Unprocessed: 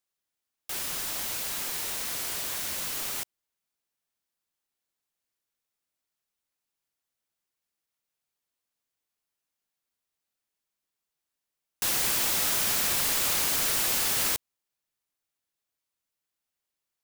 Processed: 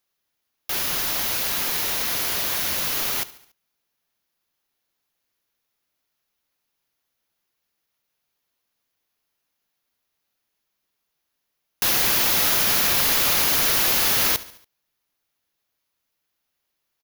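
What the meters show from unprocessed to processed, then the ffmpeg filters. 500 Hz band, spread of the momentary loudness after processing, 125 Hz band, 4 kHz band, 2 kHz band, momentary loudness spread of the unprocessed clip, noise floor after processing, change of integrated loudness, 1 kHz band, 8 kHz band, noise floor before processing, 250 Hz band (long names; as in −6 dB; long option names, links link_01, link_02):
+8.0 dB, 7 LU, +8.0 dB, +7.5 dB, +8.0 dB, 8 LU, −78 dBFS, +7.0 dB, +8.0 dB, +3.5 dB, below −85 dBFS, +8.0 dB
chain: -filter_complex "[0:a]equalizer=frequency=8200:width_type=o:width=0.29:gain=-14.5,asplit=2[link_01][link_02];[link_02]alimiter=limit=-21.5dB:level=0:latency=1,volume=-2dB[link_03];[link_01][link_03]amix=inputs=2:normalize=0,aecho=1:1:71|142|213|284:0.126|0.0655|0.034|0.0177,volume=4dB"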